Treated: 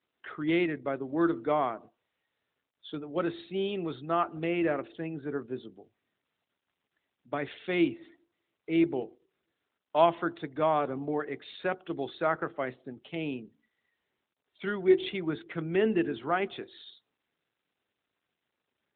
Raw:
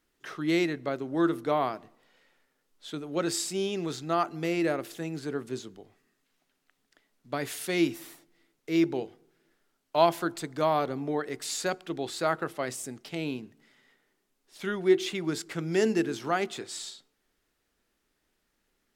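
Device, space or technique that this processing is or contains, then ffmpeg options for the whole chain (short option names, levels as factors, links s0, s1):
mobile call with aggressive noise cancelling: -af "highpass=f=120:p=1,afftdn=nr=18:nf=-50" -ar 8000 -c:a libopencore_amrnb -b:a 12200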